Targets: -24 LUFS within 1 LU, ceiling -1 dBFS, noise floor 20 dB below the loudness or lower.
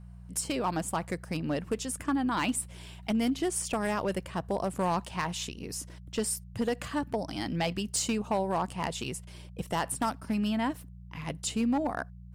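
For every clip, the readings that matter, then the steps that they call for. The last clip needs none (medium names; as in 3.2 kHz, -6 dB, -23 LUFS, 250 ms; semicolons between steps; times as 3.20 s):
clipped samples 0.9%; clipping level -22.0 dBFS; hum 60 Hz; highest harmonic 180 Hz; hum level -44 dBFS; loudness -32.0 LUFS; peak level -22.0 dBFS; loudness target -24.0 LUFS
-> clip repair -22 dBFS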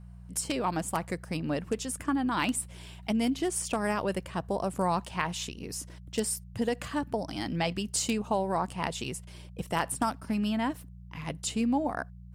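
clipped samples 0.0%; hum 60 Hz; highest harmonic 180 Hz; hum level -44 dBFS
-> de-hum 60 Hz, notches 3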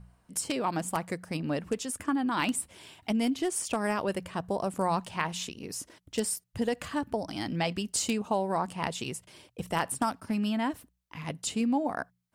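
hum not found; loudness -31.5 LUFS; peak level -13.0 dBFS; loudness target -24.0 LUFS
-> trim +7.5 dB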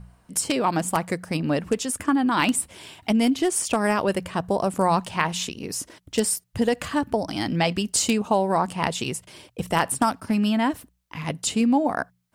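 loudness -24.0 LUFS; peak level -5.5 dBFS; noise floor -66 dBFS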